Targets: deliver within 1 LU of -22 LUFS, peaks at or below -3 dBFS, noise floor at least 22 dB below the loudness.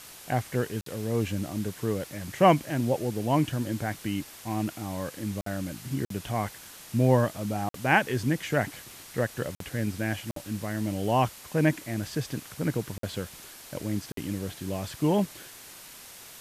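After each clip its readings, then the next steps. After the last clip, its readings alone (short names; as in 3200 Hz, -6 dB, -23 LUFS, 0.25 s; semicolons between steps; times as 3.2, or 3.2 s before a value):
dropouts 8; longest dropout 53 ms; noise floor -47 dBFS; noise floor target -51 dBFS; loudness -29.0 LUFS; peak -7.0 dBFS; loudness target -22.0 LUFS
-> interpolate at 0.81/5.41/6.05/7.69/9.55/10.31/12.98/14.12, 53 ms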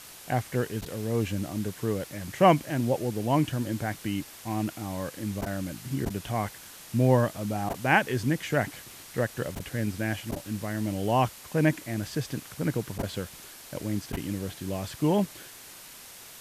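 dropouts 0; noise floor -47 dBFS; noise floor target -51 dBFS
-> denoiser 6 dB, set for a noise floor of -47 dBFS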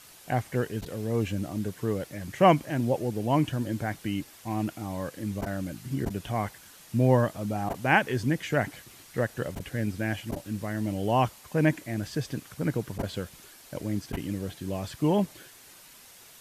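noise floor -52 dBFS; loudness -29.5 LUFS; peak -7.5 dBFS; loudness target -22.0 LUFS
-> gain +7.5 dB; limiter -3 dBFS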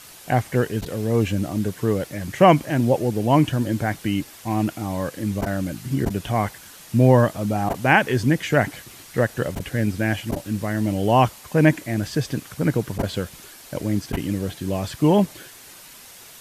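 loudness -22.0 LUFS; peak -3.0 dBFS; noise floor -44 dBFS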